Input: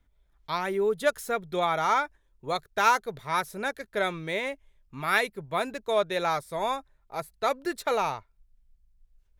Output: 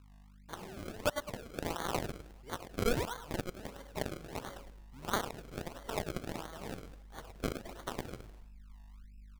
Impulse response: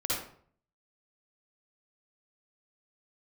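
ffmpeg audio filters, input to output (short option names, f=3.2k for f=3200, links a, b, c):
-filter_complex "[0:a]asplit=2[a][b];[1:a]atrim=start_sample=2205,afade=t=out:st=0.16:d=0.01,atrim=end_sample=7497[c];[b][c]afir=irnorm=-1:irlink=0,volume=-17dB[d];[a][d]amix=inputs=2:normalize=0,aphaser=in_gain=1:out_gain=1:delay=2.7:decay=0.26:speed=0.23:type=sinusoidal,aeval=exprs='val(0)+0.00708*(sin(2*PI*50*n/s)+sin(2*PI*2*50*n/s)/2+sin(2*PI*3*50*n/s)/3+sin(2*PI*4*50*n/s)/4+sin(2*PI*5*50*n/s)/5)':c=same,asubboost=boost=4:cutoff=55,aeval=exprs='0.422*(cos(1*acos(clip(val(0)/0.422,-1,1)))-cos(1*PI/2))+0.15*(cos(3*acos(clip(val(0)/0.422,-1,1)))-cos(3*PI/2))+0.075*(cos(5*acos(clip(val(0)/0.422,-1,1)))-cos(5*PI/2))+0.0596*(cos(7*acos(clip(val(0)/0.422,-1,1)))-cos(7*PI/2))':c=same,asplit=2[e][f];[f]adelay=105,lowpass=f=3.1k:p=1,volume=-6.5dB,asplit=2[g][h];[h]adelay=105,lowpass=f=3.1k:p=1,volume=0.34,asplit=2[i][j];[j]adelay=105,lowpass=f=3.1k:p=1,volume=0.34,asplit=2[k][l];[l]adelay=105,lowpass=f=3.1k:p=1,volume=0.34[m];[e][g][i][k][m]amix=inputs=5:normalize=0,acrusher=samples=33:mix=1:aa=0.000001:lfo=1:lforange=33:lforate=1.5,acompressor=threshold=-41dB:ratio=1.5,volume=2.5dB"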